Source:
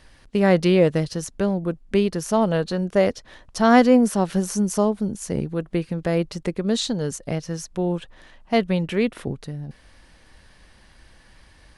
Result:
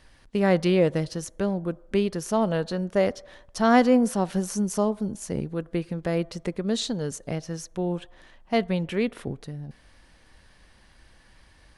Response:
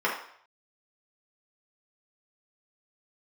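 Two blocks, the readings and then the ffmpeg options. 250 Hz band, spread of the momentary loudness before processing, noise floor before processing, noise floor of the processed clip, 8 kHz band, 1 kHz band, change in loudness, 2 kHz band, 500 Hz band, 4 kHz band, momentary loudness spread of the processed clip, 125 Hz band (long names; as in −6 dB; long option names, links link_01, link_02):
−4.0 dB, 13 LU, −53 dBFS, −56 dBFS, −4.0 dB, −3.5 dB, −4.0 dB, −3.5 dB, −4.0 dB, −4.0 dB, 13 LU, −4.0 dB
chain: -filter_complex "[0:a]asplit=2[link_01][link_02];[1:a]atrim=start_sample=2205,asetrate=27783,aresample=44100,lowshelf=frequency=490:gain=-8.5[link_03];[link_02][link_03]afir=irnorm=-1:irlink=0,volume=-33.5dB[link_04];[link_01][link_04]amix=inputs=2:normalize=0,volume=-4dB"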